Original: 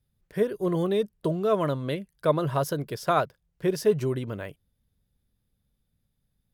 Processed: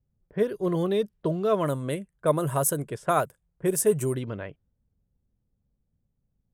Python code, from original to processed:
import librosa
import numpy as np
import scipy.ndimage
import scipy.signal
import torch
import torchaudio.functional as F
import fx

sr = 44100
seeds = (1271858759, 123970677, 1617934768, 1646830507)

y = fx.env_lowpass(x, sr, base_hz=820.0, full_db=-23.0)
y = fx.high_shelf_res(y, sr, hz=6300.0, db=11.0, q=3.0, at=(1.66, 4.15))